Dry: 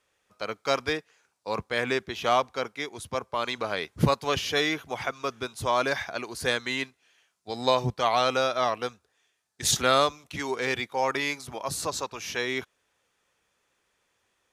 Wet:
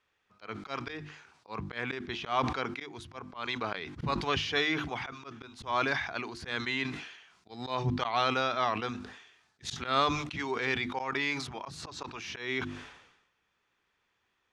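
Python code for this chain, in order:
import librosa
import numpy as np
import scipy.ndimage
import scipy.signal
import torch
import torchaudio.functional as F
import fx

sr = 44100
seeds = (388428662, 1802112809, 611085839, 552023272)

y = scipy.signal.sosfilt(scipy.signal.butter(2, 3900.0, 'lowpass', fs=sr, output='sos'), x)
y = fx.peak_eq(y, sr, hz=550.0, db=-8.0, octaves=0.64)
y = fx.hum_notches(y, sr, base_hz=50, count=7)
y = fx.auto_swell(y, sr, attack_ms=147.0)
y = fx.sustainer(y, sr, db_per_s=62.0)
y = F.gain(torch.from_numpy(y), -1.5).numpy()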